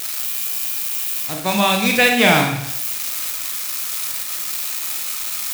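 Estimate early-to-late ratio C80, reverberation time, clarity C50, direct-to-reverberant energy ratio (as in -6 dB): 8.0 dB, 0.75 s, 5.0 dB, 1.5 dB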